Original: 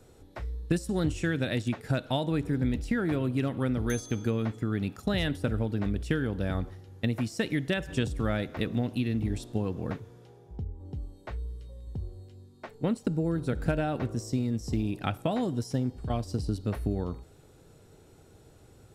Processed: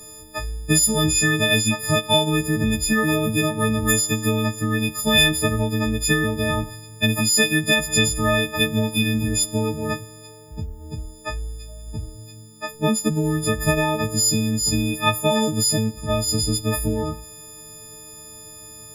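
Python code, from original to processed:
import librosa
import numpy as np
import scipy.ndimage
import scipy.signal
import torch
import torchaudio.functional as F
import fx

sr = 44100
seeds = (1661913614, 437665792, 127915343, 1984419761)

y = fx.freq_snap(x, sr, grid_st=6)
y = fx.high_shelf(y, sr, hz=5100.0, db=8.5)
y = y * 10.0 ** (7.0 / 20.0)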